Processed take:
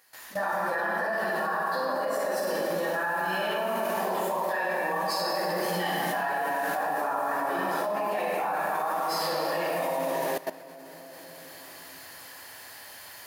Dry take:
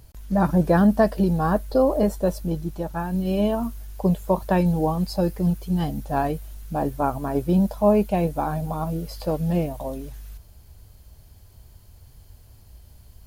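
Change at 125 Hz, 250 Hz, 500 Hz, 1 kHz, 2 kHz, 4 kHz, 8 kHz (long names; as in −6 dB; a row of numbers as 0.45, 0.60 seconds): −20.5, −16.0, −4.5, +1.0, +8.5, +6.5, +4.0 decibels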